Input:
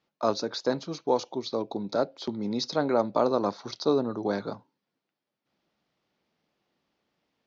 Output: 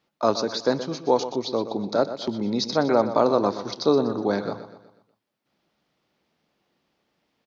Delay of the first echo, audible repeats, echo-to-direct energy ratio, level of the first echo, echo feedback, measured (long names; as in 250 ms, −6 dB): 123 ms, 4, −11.0 dB, −12.0 dB, 46%